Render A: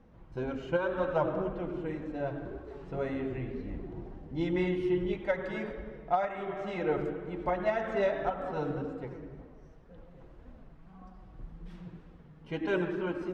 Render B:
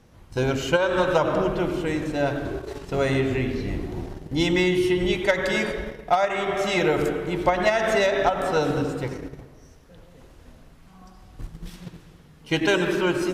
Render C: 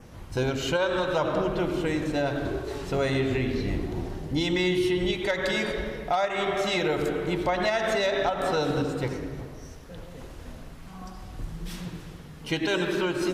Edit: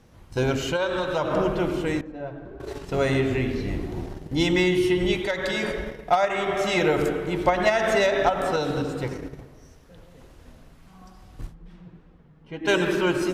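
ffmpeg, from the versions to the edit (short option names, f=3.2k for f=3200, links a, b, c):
-filter_complex "[2:a]asplit=3[a][b][c];[0:a]asplit=2[d][e];[1:a]asplit=6[f][g][h][i][j][k];[f]atrim=end=0.692[l];[a]atrim=start=0.688:end=1.312[m];[g]atrim=start=1.308:end=2.012[n];[d]atrim=start=2.008:end=2.602[o];[h]atrim=start=2.598:end=5.222[p];[b]atrim=start=5.218:end=5.632[q];[i]atrim=start=5.628:end=8.562[r];[c]atrim=start=8.558:end=9.032[s];[j]atrim=start=9.028:end=11.55[t];[e]atrim=start=11.49:end=12.7[u];[k]atrim=start=12.64[v];[l][m]acrossfade=d=0.004:c1=hsin:c2=hsin[w];[w][n]acrossfade=d=0.004:c1=hsin:c2=hsin[x];[x][o]acrossfade=d=0.004:c1=hsin:c2=hsin[y];[y][p]acrossfade=d=0.004:c1=hsin:c2=hsin[z];[z][q]acrossfade=d=0.004:c1=hsin:c2=hsin[aa];[aa][r]acrossfade=d=0.004:c1=hsin:c2=hsin[ab];[ab][s]acrossfade=d=0.004:c1=hsin:c2=hsin[ac];[ac][t]acrossfade=d=0.004:c1=hsin:c2=hsin[ad];[ad][u]acrossfade=d=0.06:c1=tri:c2=tri[ae];[ae][v]acrossfade=d=0.06:c1=tri:c2=tri"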